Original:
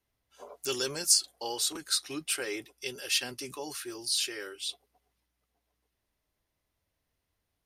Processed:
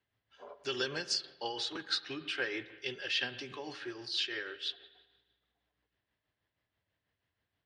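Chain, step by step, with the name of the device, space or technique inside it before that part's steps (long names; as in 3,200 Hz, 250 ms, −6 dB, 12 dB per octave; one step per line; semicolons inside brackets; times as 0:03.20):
combo amplifier with spring reverb and tremolo (spring reverb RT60 1.3 s, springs 45/50 ms, chirp 45 ms, DRR 11.5 dB; amplitude tremolo 6.2 Hz, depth 45%; loudspeaker in its box 81–4,500 Hz, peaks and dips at 110 Hz +6 dB, 1,700 Hz +8 dB, 3,100 Hz +4 dB)
level −1 dB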